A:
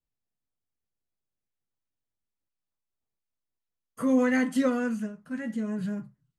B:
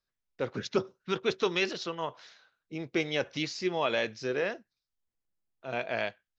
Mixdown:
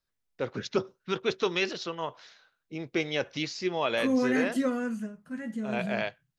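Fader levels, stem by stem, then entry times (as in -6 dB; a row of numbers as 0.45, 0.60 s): -3.0, +0.5 dB; 0.00, 0.00 s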